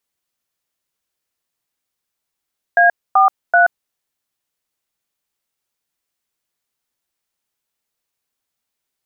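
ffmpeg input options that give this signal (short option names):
-f lavfi -i "aevalsrc='0.299*clip(min(mod(t,0.383),0.129-mod(t,0.383))/0.002,0,1)*(eq(floor(t/0.383),0)*(sin(2*PI*697*mod(t,0.383))+sin(2*PI*1633*mod(t,0.383)))+eq(floor(t/0.383),1)*(sin(2*PI*770*mod(t,0.383))+sin(2*PI*1209*mod(t,0.383)))+eq(floor(t/0.383),2)*(sin(2*PI*697*mod(t,0.383))+sin(2*PI*1477*mod(t,0.383))))':d=1.149:s=44100"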